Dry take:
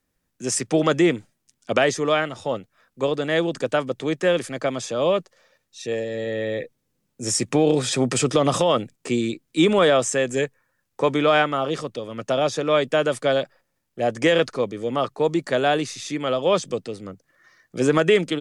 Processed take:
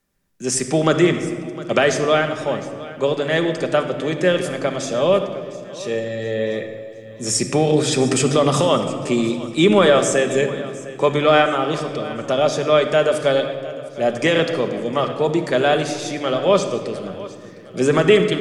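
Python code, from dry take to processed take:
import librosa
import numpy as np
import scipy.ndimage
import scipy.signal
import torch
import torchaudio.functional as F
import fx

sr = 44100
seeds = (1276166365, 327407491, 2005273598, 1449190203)

y = fx.echo_feedback(x, sr, ms=708, feedback_pct=43, wet_db=-18)
y = fx.room_shoebox(y, sr, seeds[0], volume_m3=2900.0, walls='mixed', distance_m=1.2)
y = y * librosa.db_to_amplitude(2.0)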